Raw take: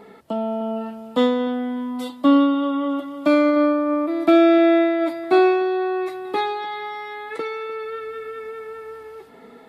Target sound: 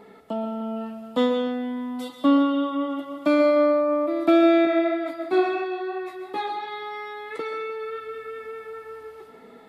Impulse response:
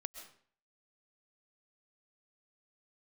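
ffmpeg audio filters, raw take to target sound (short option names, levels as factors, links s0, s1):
-filter_complex "[0:a]asettb=1/sr,asplit=3[s0][s1][s2];[s0]atrim=end=4.654[s3];[s1]atrim=start=4.65:end=6.68,asetpts=PTS-STARTPTS,afade=t=in:d=0.004:c=qsin,afade=t=out:st=2.026:d=0.004:c=qsin,flanger=delay=15.5:depth=2.8:speed=2.9[s4];[s2]atrim=start=6.676[s5];[s3][s4]acrossfade=d=0.004:c1=hsin:c2=qsin[s6];[s6][s5]acrossfade=d=0.004:c1=qsin:c2=hsin[s7];[1:a]atrim=start_sample=2205[s8];[s7][s8]afir=irnorm=-1:irlink=0"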